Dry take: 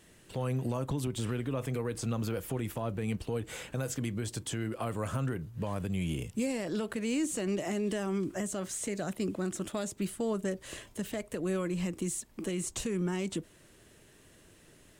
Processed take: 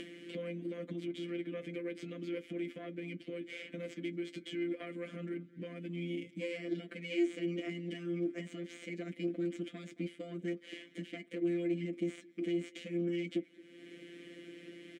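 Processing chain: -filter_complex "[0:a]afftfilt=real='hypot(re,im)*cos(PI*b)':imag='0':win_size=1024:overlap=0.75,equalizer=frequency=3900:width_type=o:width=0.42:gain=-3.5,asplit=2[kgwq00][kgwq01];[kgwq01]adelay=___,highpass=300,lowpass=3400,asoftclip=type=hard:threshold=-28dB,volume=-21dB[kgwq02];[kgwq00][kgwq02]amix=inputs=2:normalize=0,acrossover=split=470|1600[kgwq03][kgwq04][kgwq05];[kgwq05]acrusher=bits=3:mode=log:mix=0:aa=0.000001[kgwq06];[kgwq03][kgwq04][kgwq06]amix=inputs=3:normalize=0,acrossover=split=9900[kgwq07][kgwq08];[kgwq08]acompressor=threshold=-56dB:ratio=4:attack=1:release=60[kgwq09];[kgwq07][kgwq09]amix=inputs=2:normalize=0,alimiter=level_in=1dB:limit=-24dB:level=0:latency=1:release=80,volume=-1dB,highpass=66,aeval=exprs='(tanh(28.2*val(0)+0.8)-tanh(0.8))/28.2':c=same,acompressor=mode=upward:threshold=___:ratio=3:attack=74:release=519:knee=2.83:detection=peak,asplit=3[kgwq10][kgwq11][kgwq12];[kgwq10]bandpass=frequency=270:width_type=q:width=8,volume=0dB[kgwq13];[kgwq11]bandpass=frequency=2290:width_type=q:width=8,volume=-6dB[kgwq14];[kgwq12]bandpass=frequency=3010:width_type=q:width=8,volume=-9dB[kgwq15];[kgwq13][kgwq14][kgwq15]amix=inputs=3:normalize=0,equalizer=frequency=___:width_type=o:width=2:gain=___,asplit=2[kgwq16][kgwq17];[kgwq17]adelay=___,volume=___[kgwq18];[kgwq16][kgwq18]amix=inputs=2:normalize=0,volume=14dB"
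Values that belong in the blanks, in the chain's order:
220, -47dB, 620, 13, 15, -13.5dB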